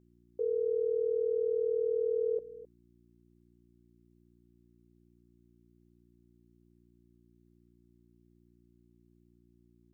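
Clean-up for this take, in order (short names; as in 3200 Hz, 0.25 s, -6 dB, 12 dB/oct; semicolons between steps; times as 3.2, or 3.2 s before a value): de-hum 58.8 Hz, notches 6; inverse comb 0.261 s -16.5 dB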